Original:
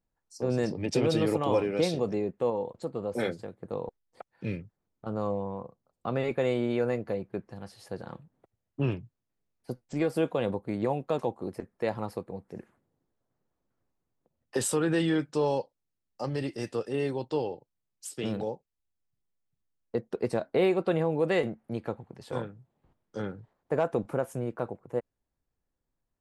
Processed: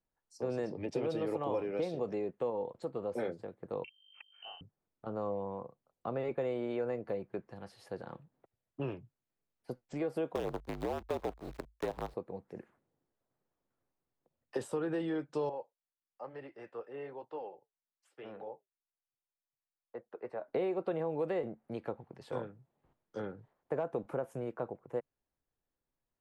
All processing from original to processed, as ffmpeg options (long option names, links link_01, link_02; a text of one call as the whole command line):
ffmpeg -i in.wav -filter_complex "[0:a]asettb=1/sr,asplit=3[link_01][link_02][link_03];[link_01]atrim=end=3.844[link_04];[link_02]atrim=start=3.84:end=4.61,asetpts=PTS-STARTPTS,afade=type=in:duration=0.004:curve=qsin,afade=type=out:start_time=0.766:duration=0.004:curve=qsin,aeval=exprs='val(0)+0.00178*(sin(2*PI*50*n/s)+sin(2*PI*2*50*n/s)/2+sin(2*PI*3*50*n/s)/3+sin(2*PI*4*50*n/s)/4+sin(2*PI*5*50*n/s)/5)':channel_layout=same,lowpass=frequency=2700:width_type=q:width=0.5098,lowpass=frequency=2700:width_type=q:width=0.6013,lowpass=frequency=2700:width_type=q:width=0.9,lowpass=frequency=2700:width_type=q:width=2.563,afreqshift=-3200[link_05];[link_03]atrim=start=4.606[link_06];[link_04][link_05]acrossfade=duration=0.004:curve1=hsin:curve2=qsin[link_07];[link_07][link_06]acrossfade=duration=0.004:curve1=qsin:curve2=hsin,asettb=1/sr,asplit=3[link_08][link_09][link_10];[link_08]atrim=end=10.354[link_11];[link_09]atrim=start=10.35:end=12.14,asetpts=PTS-STARTPTS,afade=type=in:duration=0.004:curve=qsin,afade=type=out:start_time=1.786:duration=0.004:curve=qsin,lowpass=frequency=3900:width_type=q:width=4.1,acrusher=bits=5:dc=4:mix=0:aa=0.000001,afreqshift=-53[link_12];[link_10]atrim=start=12.136[link_13];[link_11][link_12]acrossfade=duration=0.004:curve1=hsin:curve2=qsin[link_14];[link_14][link_13]acrossfade=duration=0.004:curve1=qsin:curve2=hsin,asettb=1/sr,asplit=3[link_15][link_16][link_17];[link_15]atrim=end=15.494[link_18];[link_16]atrim=start=15.49:end=20.48,asetpts=PTS-STARTPTS,afade=type=in:duration=0.004:curve=qsin,afade=type=out:start_time=4.986:duration=0.004:curve=qsin,acrossover=split=480 2300:gain=0.224 1 0.0794[link_19][link_20][link_21];[link_19][link_20][link_21]amix=inputs=3:normalize=0,flanger=delay=2.2:depth=7.1:regen=-67:speed=1.1:shape=triangular[link_22];[link_17]atrim=start=20.476[link_23];[link_18][link_22]acrossfade=duration=0.004:curve1=hsin:curve2=qsin[link_24];[link_24][link_23]acrossfade=duration=0.004:curve1=qsin:curve2=hsin,bass=frequency=250:gain=-6,treble=frequency=4000:gain=-7,acrossover=split=360|1100[link_25][link_26][link_27];[link_25]acompressor=threshold=-38dB:ratio=4[link_28];[link_26]acompressor=threshold=-31dB:ratio=4[link_29];[link_27]acompressor=threshold=-50dB:ratio=4[link_30];[link_28][link_29][link_30]amix=inputs=3:normalize=0,equalizer=frequency=140:width_type=o:width=0.21:gain=3.5,volume=-2.5dB" out.wav